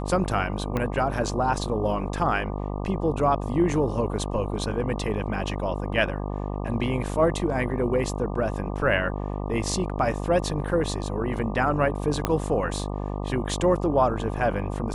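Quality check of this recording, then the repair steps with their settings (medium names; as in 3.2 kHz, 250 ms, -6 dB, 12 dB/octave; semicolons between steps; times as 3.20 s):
buzz 50 Hz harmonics 24 -30 dBFS
0.77 s: pop -14 dBFS
12.25 s: pop -8 dBFS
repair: de-click; de-hum 50 Hz, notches 24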